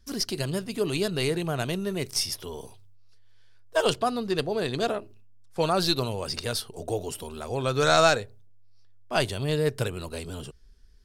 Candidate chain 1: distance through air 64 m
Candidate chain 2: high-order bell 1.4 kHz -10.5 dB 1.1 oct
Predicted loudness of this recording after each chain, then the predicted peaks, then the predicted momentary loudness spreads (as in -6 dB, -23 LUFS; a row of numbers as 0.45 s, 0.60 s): -28.0 LUFS, -28.0 LUFS; -8.0 dBFS, -9.0 dBFS; 14 LU, 13 LU